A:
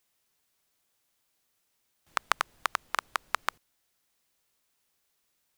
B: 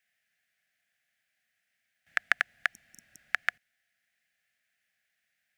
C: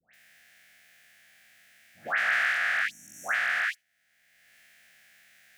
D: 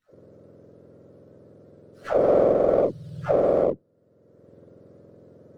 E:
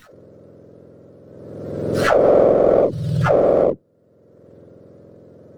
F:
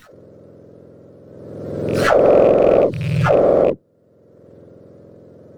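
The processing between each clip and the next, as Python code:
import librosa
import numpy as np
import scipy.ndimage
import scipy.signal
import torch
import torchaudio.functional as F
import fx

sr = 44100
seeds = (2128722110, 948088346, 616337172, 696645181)

y1 = fx.highpass(x, sr, hz=120.0, slope=6)
y1 = fx.spec_repair(y1, sr, seeds[0], start_s=2.76, length_s=0.47, low_hz=350.0, high_hz=5500.0, source='both')
y1 = fx.curve_eq(y1, sr, hz=(220.0, 370.0, 720.0, 1000.0, 1700.0, 3900.0, 13000.0), db=(0, -15, 3, -19, 15, -2, -7))
y1 = F.gain(torch.from_numpy(y1), -4.0).numpy()
y2 = fx.spec_dilate(y1, sr, span_ms=240)
y2 = fx.dispersion(y2, sr, late='highs', ms=138.0, hz=1300.0)
y2 = fx.band_squash(y2, sr, depth_pct=70)
y2 = F.gain(torch.from_numpy(y2), -6.0).numpy()
y3 = fx.octave_mirror(y2, sr, pivot_hz=980.0)
y3 = scipy.signal.sosfilt(scipy.signal.butter(2, 180.0, 'highpass', fs=sr, output='sos'), y3)
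y3 = fx.running_max(y3, sr, window=5)
y3 = F.gain(torch.from_numpy(y3), 7.0).numpy()
y4 = fx.pre_swell(y3, sr, db_per_s=35.0)
y4 = F.gain(torch.from_numpy(y4), 5.0).numpy()
y5 = fx.rattle_buzz(y4, sr, strikes_db=-22.0, level_db=-23.0)
y5 = F.gain(torch.from_numpy(y5), 1.5).numpy()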